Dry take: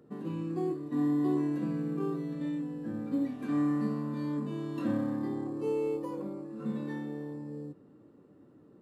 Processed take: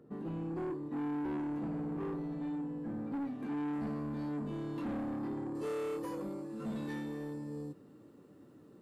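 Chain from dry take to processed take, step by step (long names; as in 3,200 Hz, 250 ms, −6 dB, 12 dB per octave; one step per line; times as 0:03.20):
high-shelf EQ 2,600 Hz −7.5 dB, from 0:03.73 −2.5 dB, from 0:05.55 +10 dB
soft clipping −34 dBFS, distortion −9 dB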